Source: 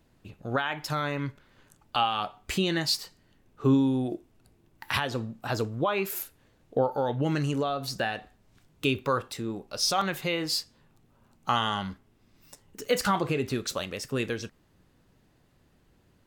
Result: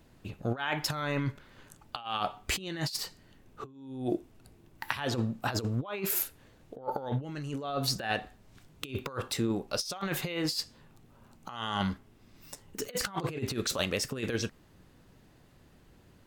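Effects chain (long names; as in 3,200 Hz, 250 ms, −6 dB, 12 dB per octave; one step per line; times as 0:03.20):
compressor whose output falls as the input rises −32 dBFS, ratio −0.5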